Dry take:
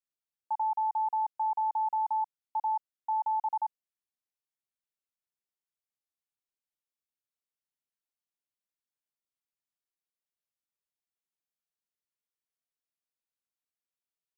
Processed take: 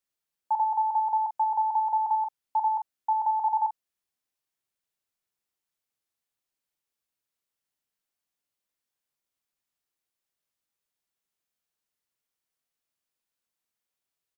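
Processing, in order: doubling 43 ms -9 dB; trim +6 dB

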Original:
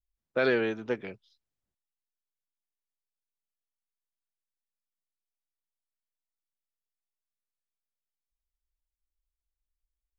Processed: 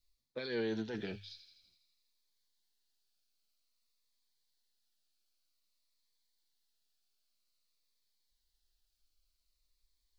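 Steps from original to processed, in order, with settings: peaking EQ 4.3 kHz +14 dB 0.63 oct; hum notches 50/100 Hz; reverse; compression 6:1, threshold -38 dBFS, peak gain reduction 16.5 dB; reverse; peak limiter -36.5 dBFS, peak gain reduction 9 dB; flange 0.22 Hz, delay 7.3 ms, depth 5.1 ms, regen +55%; on a send: feedback echo behind a high-pass 82 ms, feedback 65%, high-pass 3.6 kHz, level -8 dB; on the sum: Shepard-style phaser falling 0.52 Hz; trim +11.5 dB

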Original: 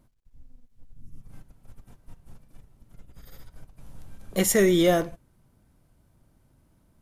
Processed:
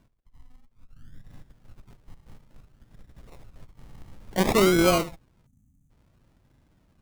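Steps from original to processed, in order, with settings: Chebyshev shaper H 2 -15 dB, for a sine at -10.5 dBFS; decimation with a swept rate 34×, swing 60% 0.57 Hz; time-frequency box 5.46–5.90 s, 300–5900 Hz -22 dB

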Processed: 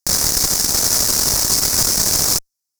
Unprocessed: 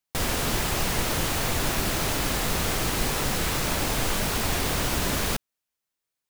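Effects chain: wide varispeed 2.25×; Chebyshev shaper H 6 -9 dB, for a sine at -12 dBFS; resonant high shelf 4.1 kHz +10 dB, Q 3; trim -1.5 dB

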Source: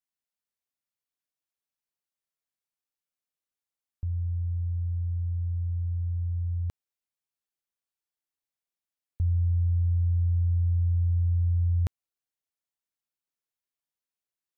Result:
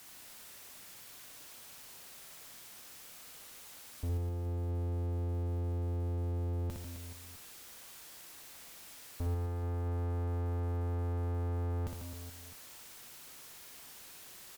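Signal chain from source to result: jump at every zero crossing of -47 dBFS; valve stage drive 38 dB, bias 0.55; reverse bouncing-ball echo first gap 60 ms, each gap 1.4×, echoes 5; trim +4.5 dB

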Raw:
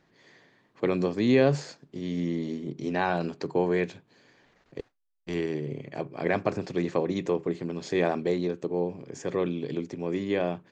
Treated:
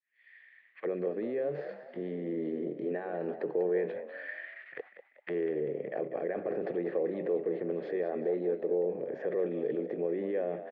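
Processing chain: fade-in on the opening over 2.41 s; in parallel at +0.5 dB: compressor with a negative ratio -33 dBFS; on the sum: peak limiter -21 dBFS, peak gain reduction 11 dB; auto-wah 430–2400 Hz, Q 2.7, down, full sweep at -29 dBFS; cabinet simulation 190–3500 Hz, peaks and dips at 270 Hz -8 dB, 390 Hz -7 dB, 950 Hz -10 dB, 1.8 kHz +10 dB; on a send: frequency-shifting echo 194 ms, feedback 41%, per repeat +52 Hz, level -11.5 dB; on the sum: trim +7 dB

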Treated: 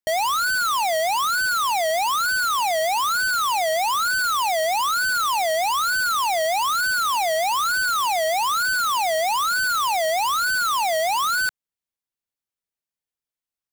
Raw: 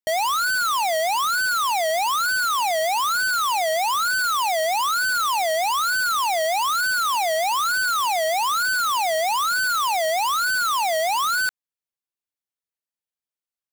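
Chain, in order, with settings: bass shelf 160 Hz +5.5 dB

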